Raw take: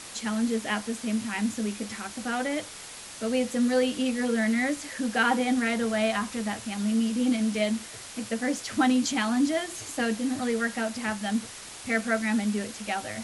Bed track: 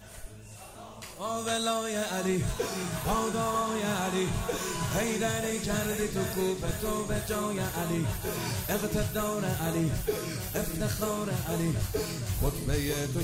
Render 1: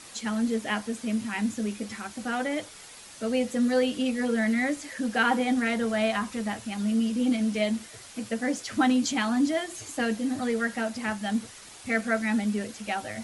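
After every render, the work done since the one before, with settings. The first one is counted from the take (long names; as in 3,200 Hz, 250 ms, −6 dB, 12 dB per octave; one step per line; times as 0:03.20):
broadband denoise 6 dB, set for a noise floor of −43 dBFS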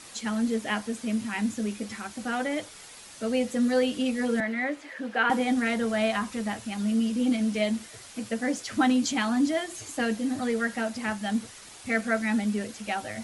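0:04.40–0:05.30: three-way crossover with the lows and the highs turned down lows −13 dB, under 290 Hz, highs −16 dB, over 3,500 Hz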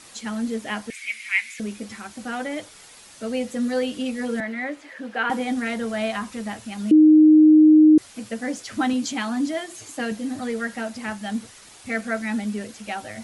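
0:00.90–0:01.60: high-pass with resonance 2,200 Hz, resonance Q 13
0:06.91–0:07.98: beep over 309 Hz −8.5 dBFS
0:08.93–0:10.12: high-pass filter 100 Hz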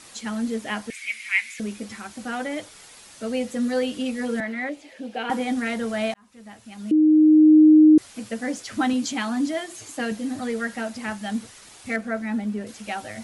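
0:04.69–0:05.29: flat-topped bell 1,400 Hz −10.5 dB 1.2 octaves
0:06.14–0:07.57: fade in
0:11.96–0:12.67: high-shelf EQ 2,200 Hz −11 dB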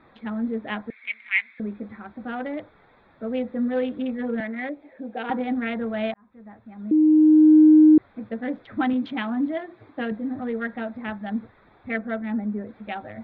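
adaptive Wiener filter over 15 samples
Chebyshev low-pass filter 3,600 Hz, order 5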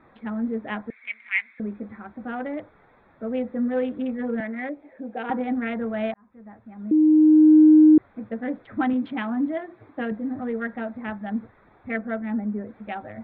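low-pass filter 2,500 Hz 12 dB per octave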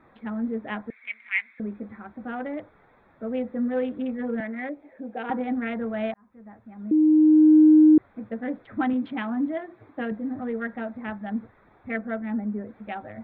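level −1.5 dB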